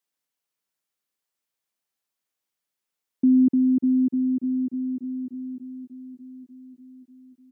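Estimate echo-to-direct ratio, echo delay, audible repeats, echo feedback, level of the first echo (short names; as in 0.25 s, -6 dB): -12.0 dB, 0.591 s, 5, 58%, -14.0 dB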